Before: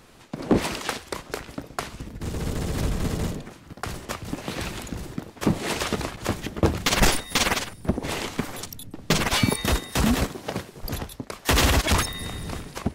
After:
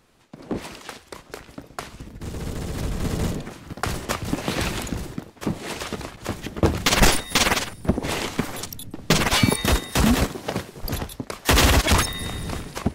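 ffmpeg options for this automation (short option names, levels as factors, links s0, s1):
-af "volume=4.47,afade=t=in:st=0.88:d=1.11:silence=0.473151,afade=t=in:st=2.88:d=0.74:silence=0.398107,afade=t=out:st=4.82:d=0.51:silence=0.316228,afade=t=in:st=6.21:d=0.62:silence=0.446684"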